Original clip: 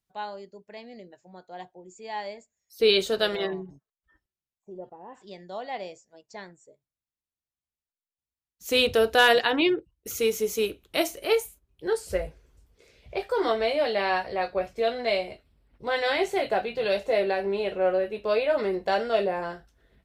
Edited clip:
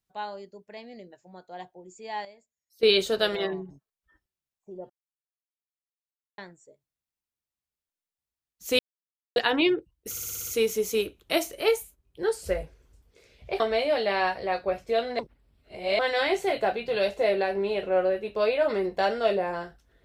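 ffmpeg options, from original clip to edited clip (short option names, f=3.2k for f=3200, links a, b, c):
-filter_complex "[0:a]asplit=16[a][b][c][d][e][f][g][h][i][j][k][l][m][n][o][p];[a]atrim=end=2.252[q];[b]atrim=start=2.248:end=2.832,asetpts=PTS-STARTPTS,volume=-12dB[r];[c]atrim=start=2.828:end=4.9,asetpts=PTS-STARTPTS,afade=t=out:st=2.068:d=0.004:c=hsin[s];[d]atrim=start=4.9:end=6.38,asetpts=PTS-STARTPTS,volume=0[t];[e]atrim=start=6.38:end=8.79,asetpts=PTS-STARTPTS,afade=t=in:d=0.004:c=hsin,afade=t=out:st=2.406:d=0.004:c=hsin[u];[f]atrim=start=8.79:end=9.36,asetpts=PTS-STARTPTS,volume=0[v];[g]atrim=start=9.36:end=10.162,asetpts=PTS-STARTPTS,afade=t=in:d=0.004:c=hsin[w];[h]atrim=start=10.098:end=10.162[x];[i]atrim=start=10.098:end=10.162[y];[j]atrim=start=10.098:end=10.162[z];[k]atrim=start=10.098:end=10.162[aa];[l]atrim=start=10.098:end=10.162[ab];[m]atrim=start=10.098:end=13.242[ac];[n]atrim=start=13.488:end=15.082[ad];[o]atrim=start=15.078:end=15.882,asetpts=PTS-STARTPTS,areverse[ae];[p]atrim=start=15.878[af];[q][r]acrossfade=d=0.004:c1=hsin:c2=hsin[ag];[s][t][u][v][w]concat=n=5:v=0:a=1[ah];[ag][ah]acrossfade=d=0.004:c1=hsin:c2=hsin[ai];[ai][x]acrossfade=d=0.004:c1=hsin:c2=hsin[aj];[aj][y]acrossfade=d=0.004:c1=hsin:c2=hsin[ak];[ak][z]acrossfade=d=0.004:c1=hsin:c2=hsin[al];[al][aa]acrossfade=d=0.004:c1=hsin:c2=hsin[am];[am][ab]acrossfade=d=0.004:c1=hsin:c2=hsin[an];[an][ac]acrossfade=d=0.004:c1=hsin:c2=hsin[ao];[ao][ad]acrossfade=d=0.004:c1=hsin:c2=hsin[ap];[ap][ae]acrossfade=d=0.004:c1=hsin:c2=hsin[aq];[aq][af]acrossfade=d=0.004:c1=hsin:c2=hsin"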